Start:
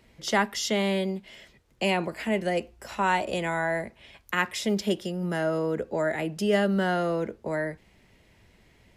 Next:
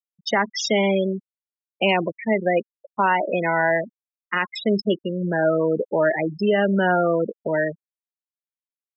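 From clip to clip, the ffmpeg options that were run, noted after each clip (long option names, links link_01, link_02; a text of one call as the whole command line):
ffmpeg -i in.wav -af "afftfilt=real='re*gte(hypot(re,im),0.0708)':imag='im*gte(hypot(re,im),0.0708)':win_size=1024:overlap=0.75,lowshelf=frequency=270:gain=-6.5,alimiter=limit=-19dB:level=0:latency=1:release=74,volume=9dB" out.wav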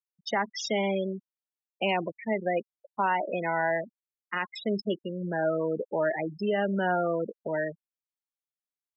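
ffmpeg -i in.wav -af "equalizer=frequency=800:width=3:gain=3.5,volume=-8.5dB" out.wav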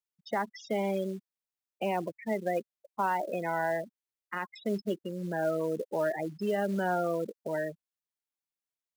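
ffmpeg -i in.wav -filter_complex "[0:a]acrossover=split=1800[link_01][link_02];[link_01]acrusher=bits=6:mode=log:mix=0:aa=0.000001[link_03];[link_02]acompressor=threshold=-46dB:ratio=10[link_04];[link_03][link_04]amix=inputs=2:normalize=0,volume=-2.5dB" out.wav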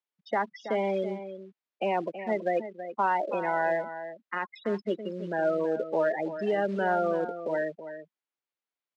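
ffmpeg -i in.wav -filter_complex "[0:a]highpass=240,lowpass=3400,asplit=2[link_01][link_02];[link_02]adelay=326.5,volume=-11dB,highshelf=frequency=4000:gain=-7.35[link_03];[link_01][link_03]amix=inputs=2:normalize=0,volume=3.5dB" out.wav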